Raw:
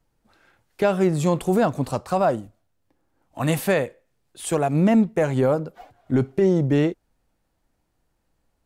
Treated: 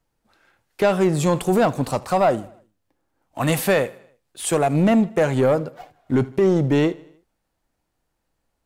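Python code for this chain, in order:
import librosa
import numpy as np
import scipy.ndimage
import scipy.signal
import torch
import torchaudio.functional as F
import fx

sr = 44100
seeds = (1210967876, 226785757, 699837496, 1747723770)

p1 = fx.low_shelf(x, sr, hz=370.0, db=-4.5)
p2 = fx.leveller(p1, sr, passes=1)
p3 = p2 + fx.echo_feedback(p2, sr, ms=78, feedback_pct=53, wet_db=-22.0, dry=0)
y = p3 * 10.0 ** (1.5 / 20.0)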